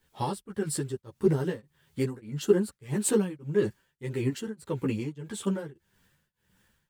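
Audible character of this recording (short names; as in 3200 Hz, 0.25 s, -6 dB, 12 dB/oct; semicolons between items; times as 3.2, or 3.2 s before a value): a quantiser's noise floor 12-bit, dither triangular; tremolo triangle 1.7 Hz, depth 100%; a shimmering, thickened sound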